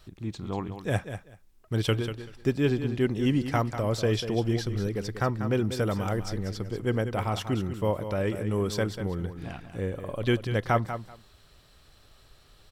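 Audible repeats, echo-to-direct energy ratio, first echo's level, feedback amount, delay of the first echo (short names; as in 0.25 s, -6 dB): 2, -10.0 dB, -10.0 dB, 17%, 0.192 s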